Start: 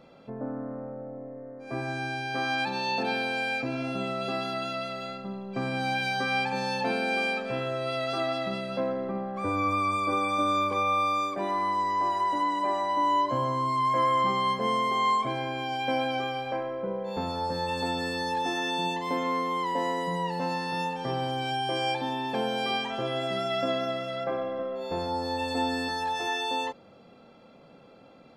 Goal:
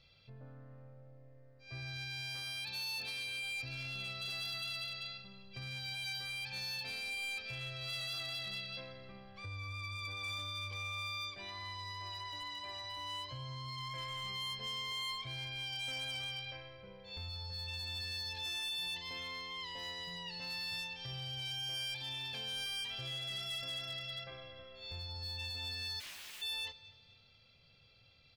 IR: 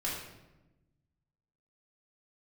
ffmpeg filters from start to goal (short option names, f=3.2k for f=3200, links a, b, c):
-filter_complex "[0:a]firequalizer=gain_entry='entry(100,0);entry(180,-22);entry(270,-30);entry(420,-25);entry(850,-28);entry(4800,-5);entry(7300,-18)':delay=0.05:min_phase=1,asplit=2[a][b];[b]aecho=0:1:248|496|744:0.0708|0.0269|0.0102[c];[a][c]amix=inputs=2:normalize=0,alimiter=level_in=16.5dB:limit=-24dB:level=0:latency=1:release=192,volume=-16.5dB,asplit=3[d][e][f];[d]afade=t=out:st=25.99:d=0.02[g];[e]aeval=exprs='(mod(398*val(0)+1,2)-1)/398':c=same,afade=t=in:st=25.99:d=0.02,afade=t=out:st=26.41:d=0.02[h];[f]afade=t=in:st=26.41:d=0.02[i];[g][h][i]amix=inputs=3:normalize=0,equalizer=f=2.7k:w=0.71:g=14,asoftclip=type=hard:threshold=-38.5dB,volume=1.5dB"